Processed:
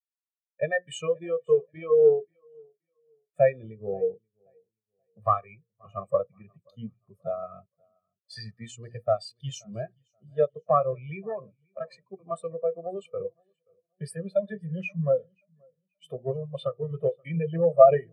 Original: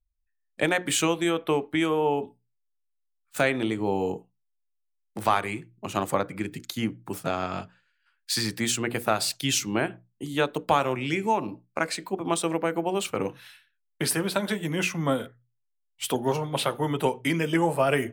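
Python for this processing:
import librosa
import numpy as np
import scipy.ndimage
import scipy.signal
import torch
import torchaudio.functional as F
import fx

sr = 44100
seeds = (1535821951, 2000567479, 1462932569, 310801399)

y = fx.diode_clip(x, sr, knee_db=-21.0)
y = scipy.signal.sosfilt(scipy.signal.butter(2, 50.0, 'highpass', fs=sr, output='sos'), y)
y = y + 0.75 * np.pad(y, (int(1.7 * sr / 1000.0), 0))[:len(y)]
y = fx.echo_feedback(y, sr, ms=529, feedback_pct=52, wet_db=-14.0)
y = fx.spectral_expand(y, sr, expansion=2.5)
y = F.gain(torch.from_numpy(y), 5.5).numpy()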